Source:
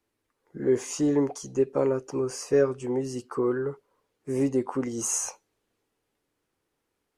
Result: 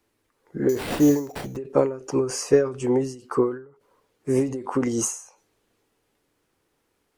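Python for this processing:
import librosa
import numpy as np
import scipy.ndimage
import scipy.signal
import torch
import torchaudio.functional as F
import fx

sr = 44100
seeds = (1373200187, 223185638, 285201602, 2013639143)

y = fx.sample_hold(x, sr, seeds[0], rate_hz=6400.0, jitter_pct=0, at=(0.69, 1.57))
y = fx.end_taper(y, sr, db_per_s=120.0)
y = F.gain(torch.from_numpy(y), 7.5).numpy()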